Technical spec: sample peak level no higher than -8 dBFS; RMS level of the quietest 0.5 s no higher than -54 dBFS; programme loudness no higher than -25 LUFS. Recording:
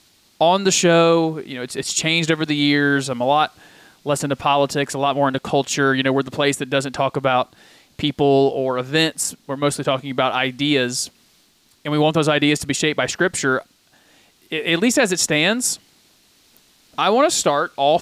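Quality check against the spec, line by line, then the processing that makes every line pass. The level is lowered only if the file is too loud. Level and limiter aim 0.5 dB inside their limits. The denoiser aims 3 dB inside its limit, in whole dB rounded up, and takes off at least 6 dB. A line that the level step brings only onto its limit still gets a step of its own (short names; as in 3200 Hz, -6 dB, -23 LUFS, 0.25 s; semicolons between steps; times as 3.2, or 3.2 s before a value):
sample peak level -6.0 dBFS: fail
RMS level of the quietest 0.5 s -57 dBFS: OK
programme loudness -19.0 LUFS: fail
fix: gain -6.5 dB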